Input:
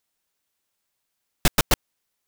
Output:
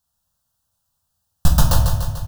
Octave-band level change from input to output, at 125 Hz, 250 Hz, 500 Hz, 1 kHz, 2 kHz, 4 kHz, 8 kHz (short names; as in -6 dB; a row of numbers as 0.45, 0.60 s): +14.0, +5.0, 0.0, +3.0, -5.5, -1.5, +1.0 dB